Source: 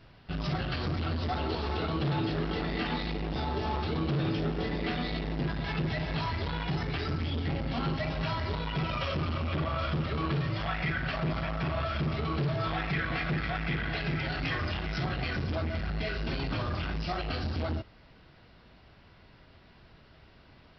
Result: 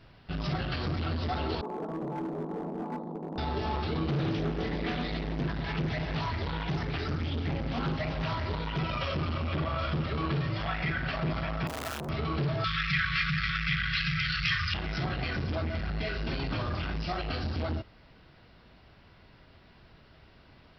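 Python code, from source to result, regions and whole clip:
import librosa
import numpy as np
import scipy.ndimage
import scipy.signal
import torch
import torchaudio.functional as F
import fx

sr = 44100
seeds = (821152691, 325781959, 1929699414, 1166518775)

y = fx.chain(x, sr, fx.ellip_bandpass(low_hz=180.0, high_hz=1000.0, order=3, stop_db=40),
    fx.clip_hard(threshold_db=-30.5), at=(1.61, 3.38))
y = fx.chain(y, sr, fx.high_shelf(hz=5200.0, db=-3.5),
    fx.doppler_dist(depth_ms=0.24), at=(4.05, 8.79))
y = fx.chain(y, sr, fx.clip_1bit(),
    fx.highpass(hz=63.0, slope=12),
    fx.transformer_sat(knee_hz=740.0), at=(11.67, 12.09))
y = fx.chain(y, sr, fx.brickwall_bandstop(low_hz=200.0, high_hz=1100.0),
    fx.high_shelf(hz=2100.0, db=11.0), at=(12.64, 14.74))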